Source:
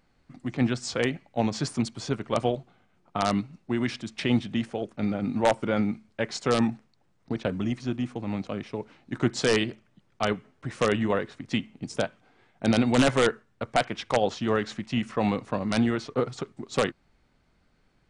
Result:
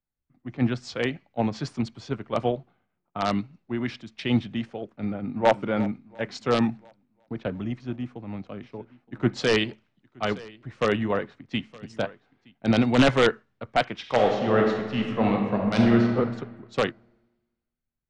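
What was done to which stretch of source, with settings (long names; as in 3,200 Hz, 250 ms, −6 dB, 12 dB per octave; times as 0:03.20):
0:05.04–0:05.59: delay throw 350 ms, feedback 65%, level −14.5 dB
0:07.69–0:12.86: single-tap delay 920 ms −16 dB
0:13.99–0:16.14: thrown reverb, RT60 2.2 s, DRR 0.5 dB
whole clip: low-pass filter 4,300 Hz 12 dB per octave; multiband upward and downward expander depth 70%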